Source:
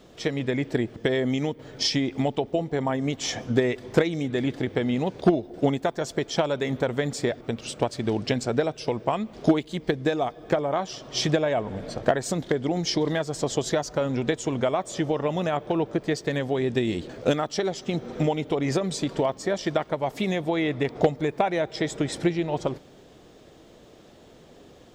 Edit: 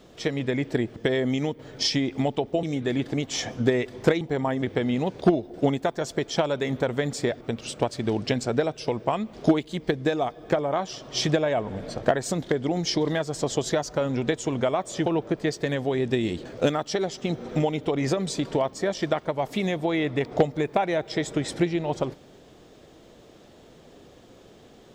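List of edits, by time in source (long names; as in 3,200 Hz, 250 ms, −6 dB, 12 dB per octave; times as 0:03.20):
0:02.63–0:03.04: swap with 0:04.11–0:04.62
0:15.06–0:15.70: remove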